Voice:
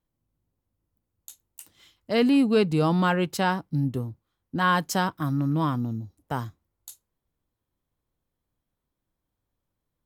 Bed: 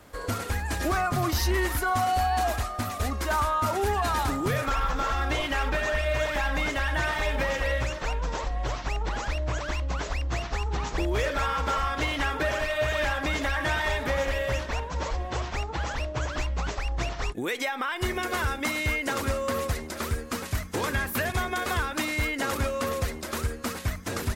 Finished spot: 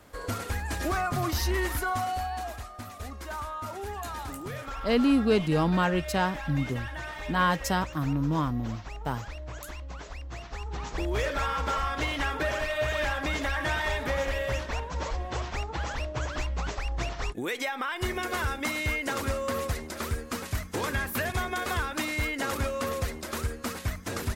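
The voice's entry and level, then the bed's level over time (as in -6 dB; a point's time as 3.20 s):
2.75 s, -2.5 dB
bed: 1.82 s -2.5 dB
2.51 s -10.5 dB
10.33 s -10.5 dB
11.17 s -2 dB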